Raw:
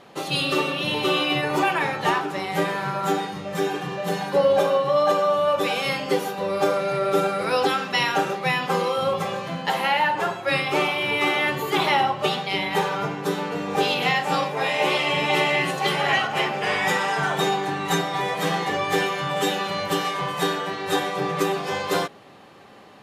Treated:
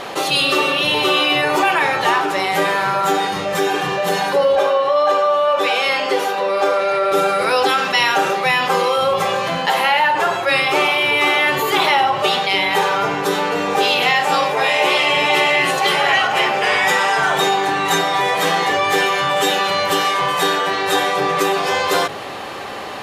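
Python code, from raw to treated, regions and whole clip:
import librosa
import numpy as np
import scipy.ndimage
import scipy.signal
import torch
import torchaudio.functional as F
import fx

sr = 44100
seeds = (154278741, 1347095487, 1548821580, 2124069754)

y = fx.chain(x, sr, fx.bessel_highpass(hz=320.0, order=2),
    fx.high_shelf(hz=7100.0, db=-11.5), at=(4.55, 7.12))
y = fx.peak_eq(y, sr, hz=180.0, db=-10.0, octaves=1.7)
y = fx.hum_notches(y, sr, base_hz=50, count=3)
y = fx.env_flatten(y, sr, amount_pct=50)
y = y * 10.0 ** (4.5 / 20.0)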